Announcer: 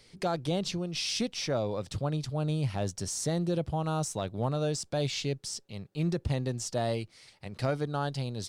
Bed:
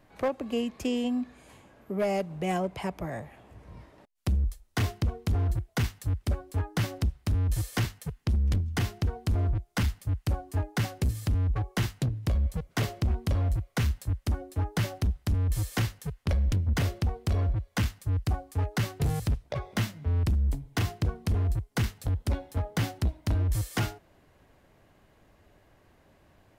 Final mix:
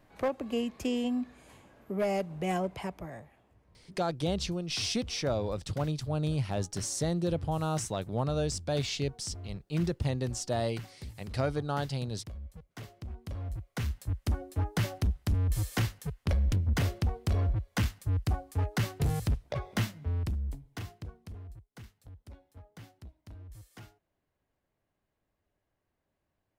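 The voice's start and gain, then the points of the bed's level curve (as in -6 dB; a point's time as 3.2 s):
3.75 s, -0.5 dB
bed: 2.71 s -2 dB
3.7 s -16.5 dB
12.91 s -16.5 dB
14.28 s -1.5 dB
19.81 s -1.5 dB
21.69 s -21.5 dB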